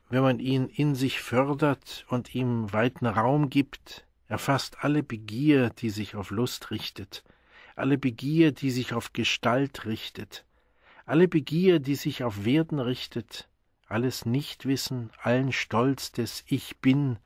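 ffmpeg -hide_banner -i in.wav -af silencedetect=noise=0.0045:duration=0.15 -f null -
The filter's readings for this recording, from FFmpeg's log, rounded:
silence_start: 4.01
silence_end: 4.30 | silence_duration: 0.29
silence_start: 7.30
silence_end: 7.53 | silence_duration: 0.22
silence_start: 10.41
silence_end: 10.89 | silence_duration: 0.48
silence_start: 13.43
silence_end: 13.90 | silence_duration: 0.48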